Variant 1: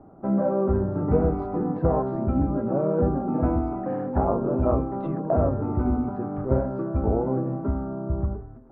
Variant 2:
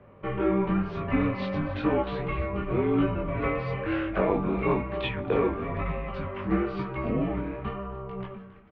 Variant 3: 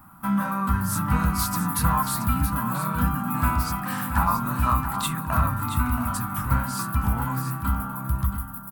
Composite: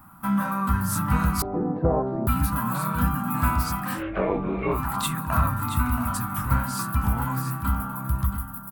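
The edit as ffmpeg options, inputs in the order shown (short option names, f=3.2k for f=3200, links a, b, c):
-filter_complex "[2:a]asplit=3[a][b][c];[a]atrim=end=1.422[d];[0:a]atrim=start=1.418:end=2.272[e];[b]atrim=start=2.268:end=4.03[f];[1:a]atrim=start=3.93:end=4.81[g];[c]atrim=start=4.71[h];[d][e]acrossfade=d=0.004:c1=hsin:c2=hsin[i];[i][f]acrossfade=d=0.004:c1=hsin:c2=hsin[j];[j][g]acrossfade=d=0.1:c1=tri:c2=tri[k];[k][h]acrossfade=d=0.1:c1=tri:c2=tri"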